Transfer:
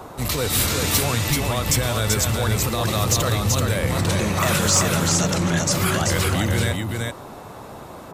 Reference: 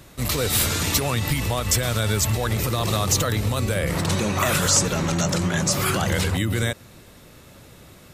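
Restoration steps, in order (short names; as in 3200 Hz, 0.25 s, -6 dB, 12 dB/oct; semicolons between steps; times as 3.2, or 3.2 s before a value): clip repair -9.5 dBFS; noise print and reduce 9 dB; inverse comb 0.384 s -3.5 dB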